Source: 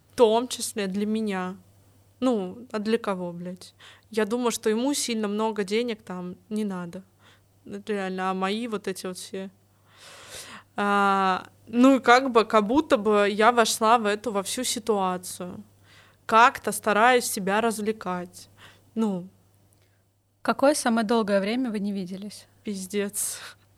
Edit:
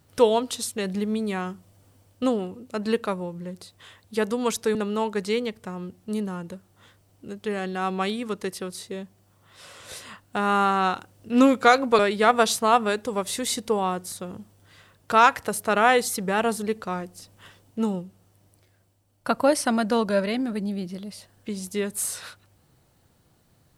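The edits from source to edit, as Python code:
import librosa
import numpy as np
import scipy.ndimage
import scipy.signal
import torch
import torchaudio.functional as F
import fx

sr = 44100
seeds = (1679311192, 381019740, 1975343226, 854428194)

y = fx.edit(x, sr, fx.cut(start_s=4.75, length_s=0.43),
    fx.cut(start_s=12.42, length_s=0.76), tone=tone)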